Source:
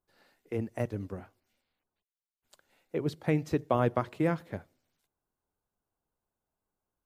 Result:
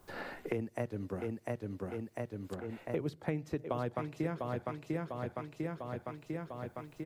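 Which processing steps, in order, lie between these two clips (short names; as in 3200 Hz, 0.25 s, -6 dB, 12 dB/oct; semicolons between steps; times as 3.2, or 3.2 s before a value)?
feedback echo 0.699 s, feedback 38%, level -6 dB; three-band squash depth 100%; gain -4.5 dB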